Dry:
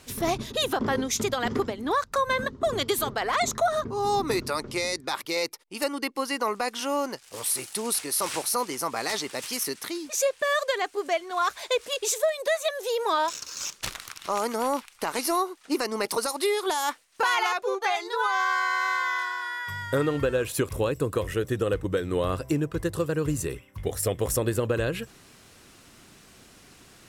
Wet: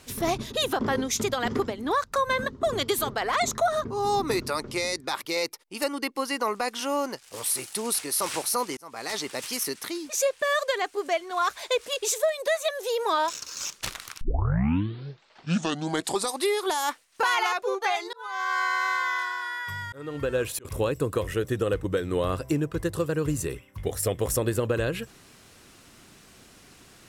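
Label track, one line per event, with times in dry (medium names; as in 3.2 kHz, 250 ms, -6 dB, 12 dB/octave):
8.770000	9.240000	fade in
14.210000	14.210000	tape start 2.28 s
18.040000	20.650000	slow attack 480 ms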